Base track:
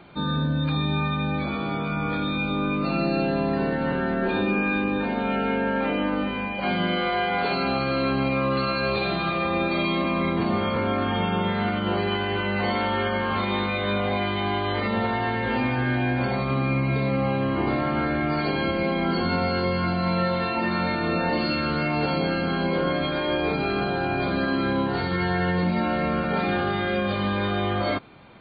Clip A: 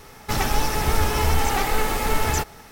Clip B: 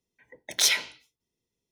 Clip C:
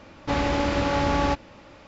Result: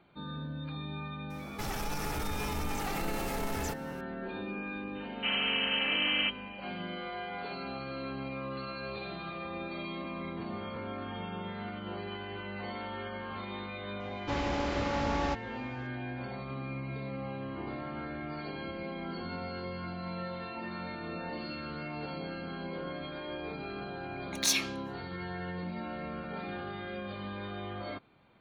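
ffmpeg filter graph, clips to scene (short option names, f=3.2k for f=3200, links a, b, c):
-filter_complex "[3:a]asplit=2[a][b];[0:a]volume=-15dB[c];[1:a]alimiter=limit=-16.5dB:level=0:latency=1:release=15[d];[a]lowpass=f=2.7k:t=q:w=0.5098,lowpass=f=2.7k:t=q:w=0.6013,lowpass=f=2.7k:t=q:w=0.9,lowpass=f=2.7k:t=q:w=2.563,afreqshift=-3200[e];[2:a]afreqshift=240[f];[d]atrim=end=2.71,asetpts=PTS-STARTPTS,volume=-10.5dB,afade=t=in:d=0.004:c=hsin,afade=t=out:st=2.706:d=0.004:c=hsin,adelay=1300[g];[e]atrim=end=1.87,asetpts=PTS-STARTPTS,volume=-7.5dB,afade=t=in:d=0.004:c=hsin,afade=t=out:st=1.866:d=0.004:c=hsin,adelay=4950[h];[b]atrim=end=1.87,asetpts=PTS-STARTPTS,volume=-8.5dB,afade=t=in:d=0.004:c=hsin,afade=t=out:st=1.866:d=0.004:c=hsin,adelay=14000[i];[f]atrim=end=1.71,asetpts=PTS-STARTPTS,volume=-6dB,afade=t=in:d=0.004:c=hsin,afade=t=out:st=1.706:d=0.004:c=hsin,adelay=23840[j];[c][g][h][i][j]amix=inputs=5:normalize=0"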